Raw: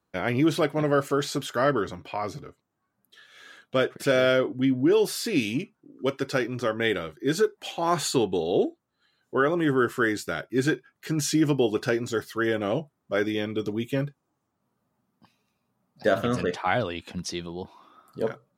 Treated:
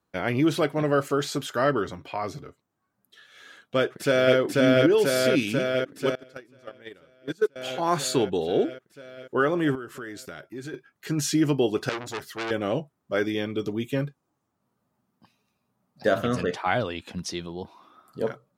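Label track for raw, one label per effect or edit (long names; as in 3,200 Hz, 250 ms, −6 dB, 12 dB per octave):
3.780000	4.370000	delay throw 490 ms, feedback 75%, level −0.5 dB
6.150000	7.560000	noise gate −21 dBFS, range −25 dB
9.750000	10.740000	downward compressor 3 to 1, threshold −38 dBFS
11.890000	12.510000	saturating transformer saturates under 3,000 Hz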